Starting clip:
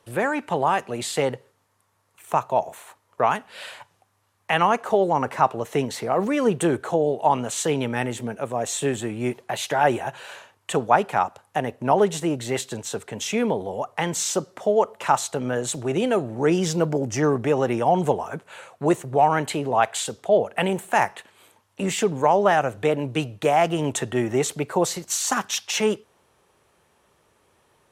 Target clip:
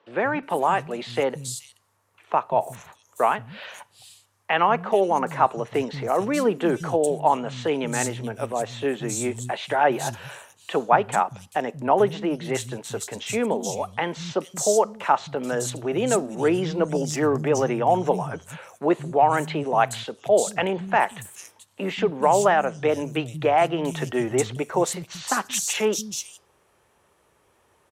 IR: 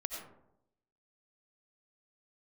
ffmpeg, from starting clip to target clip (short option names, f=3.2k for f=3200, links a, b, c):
-filter_complex "[0:a]acrossover=split=180|4200[a][b][c];[a]adelay=180[d];[c]adelay=430[e];[d][b][e]amix=inputs=3:normalize=0"